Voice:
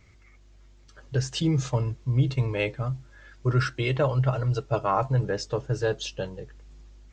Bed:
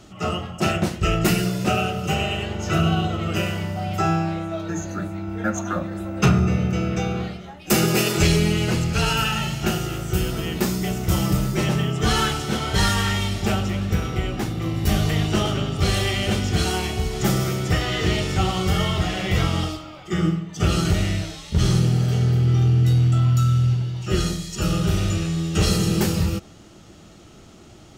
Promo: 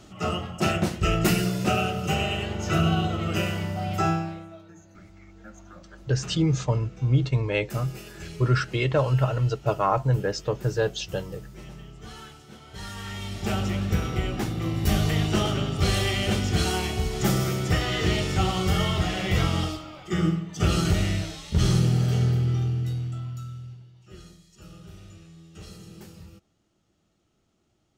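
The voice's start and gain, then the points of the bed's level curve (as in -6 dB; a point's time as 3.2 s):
4.95 s, +1.5 dB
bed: 4.08 s -2.5 dB
4.75 s -22.5 dB
12.65 s -22.5 dB
13.64 s -2.5 dB
22.23 s -2.5 dB
23.91 s -24.5 dB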